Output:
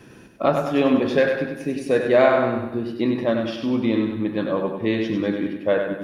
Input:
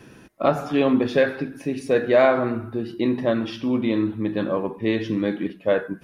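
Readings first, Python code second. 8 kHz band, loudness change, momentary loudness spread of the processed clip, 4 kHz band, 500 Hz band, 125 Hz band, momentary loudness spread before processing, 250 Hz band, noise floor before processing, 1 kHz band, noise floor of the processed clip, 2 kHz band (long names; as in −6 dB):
can't be measured, +1.0 dB, 8 LU, +1.5 dB, +1.0 dB, +0.5 dB, 8 LU, +1.0 dB, −48 dBFS, +1.0 dB, −45 dBFS, +1.5 dB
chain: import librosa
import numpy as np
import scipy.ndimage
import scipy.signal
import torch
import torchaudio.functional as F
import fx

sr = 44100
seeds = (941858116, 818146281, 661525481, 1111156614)

y = fx.echo_feedback(x, sr, ms=98, feedback_pct=49, wet_db=-6.0)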